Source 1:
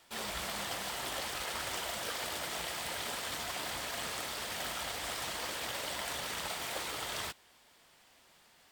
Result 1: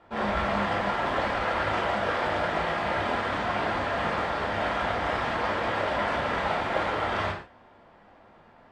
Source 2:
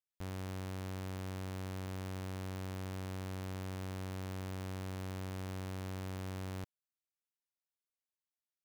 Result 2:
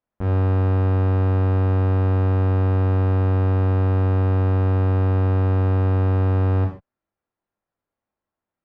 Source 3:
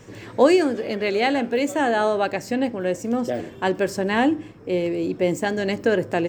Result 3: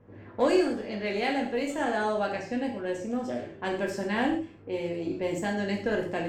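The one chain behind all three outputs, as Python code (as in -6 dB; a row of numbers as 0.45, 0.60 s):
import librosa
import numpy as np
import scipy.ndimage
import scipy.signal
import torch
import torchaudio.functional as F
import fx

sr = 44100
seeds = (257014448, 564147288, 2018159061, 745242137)

y = fx.env_lowpass(x, sr, base_hz=1000.0, full_db=-18.0)
y = fx.cheby_harmonics(y, sr, harmonics=(6,), levels_db=(-28,), full_scale_db=-4.0)
y = fx.rev_gated(y, sr, seeds[0], gate_ms=170, shape='falling', drr_db=-1.0)
y = y * 10.0 ** (-12 / 20.0) / np.max(np.abs(y))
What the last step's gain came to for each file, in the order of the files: +12.0, +17.0, -11.0 dB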